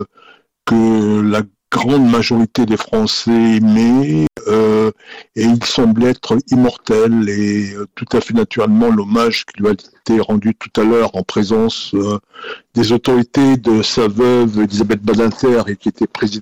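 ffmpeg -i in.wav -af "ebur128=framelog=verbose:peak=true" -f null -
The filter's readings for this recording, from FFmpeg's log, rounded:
Integrated loudness:
  I:         -14.0 LUFS
  Threshold: -24.3 LUFS
Loudness range:
  LRA:         2.3 LU
  Threshold: -34.2 LUFS
  LRA low:   -15.4 LUFS
  LRA high:  -13.1 LUFS
True peak:
  Peak:       -5.2 dBFS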